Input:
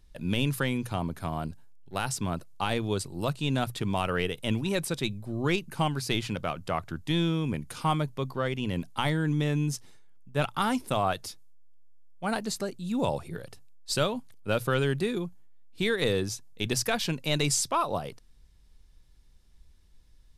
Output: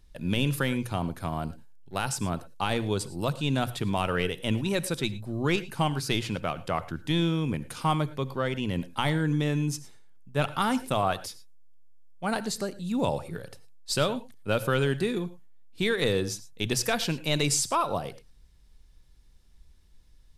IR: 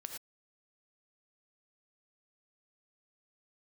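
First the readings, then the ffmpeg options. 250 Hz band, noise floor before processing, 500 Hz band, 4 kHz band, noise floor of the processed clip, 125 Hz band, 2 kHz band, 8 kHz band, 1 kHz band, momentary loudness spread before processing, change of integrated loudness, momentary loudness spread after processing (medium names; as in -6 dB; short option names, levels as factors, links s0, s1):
+1.0 dB, -57 dBFS, +1.0 dB, +1.0 dB, -56 dBFS, +1.0 dB, +1.0 dB, +1.0 dB, +1.0 dB, 8 LU, +1.0 dB, 8 LU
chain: -filter_complex "[0:a]asplit=2[s0][s1];[1:a]atrim=start_sample=2205[s2];[s1][s2]afir=irnorm=-1:irlink=0,volume=0.531[s3];[s0][s3]amix=inputs=2:normalize=0,volume=0.841"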